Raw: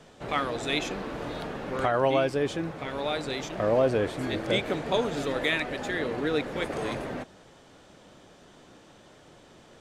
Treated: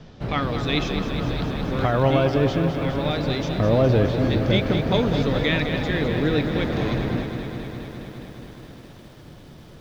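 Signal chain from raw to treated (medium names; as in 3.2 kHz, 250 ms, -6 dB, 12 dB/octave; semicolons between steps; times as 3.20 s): steep low-pass 5.5 kHz 36 dB/octave; tone controls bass +14 dB, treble +5 dB; bit-crushed delay 207 ms, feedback 80%, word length 9-bit, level -8.5 dB; trim +1.5 dB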